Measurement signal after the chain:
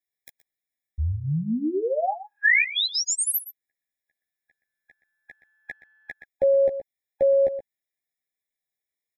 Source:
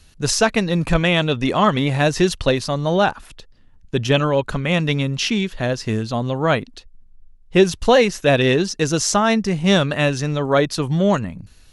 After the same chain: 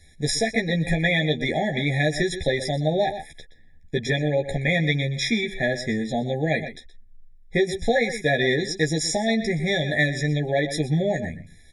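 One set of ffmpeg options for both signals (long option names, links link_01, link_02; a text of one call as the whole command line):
ffmpeg -i in.wav -filter_complex "[0:a]highshelf=frequency=9500:gain=8.5,asplit=2[link_01][link_02];[link_02]adelay=122.4,volume=-14dB,highshelf=frequency=4000:gain=-2.76[link_03];[link_01][link_03]amix=inputs=2:normalize=0,acompressor=threshold=-16dB:ratio=6,equalizer=frequency=1700:width=1:gain=9,asplit=2[link_04][link_05];[link_05]adelay=13,volume=-3.5dB[link_06];[link_04][link_06]amix=inputs=2:normalize=0,afftfilt=real='re*eq(mod(floor(b*sr/1024/820),2),0)':imag='im*eq(mod(floor(b*sr/1024/820),2),0)':win_size=1024:overlap=0.75,volume=-4.5dB" out.wav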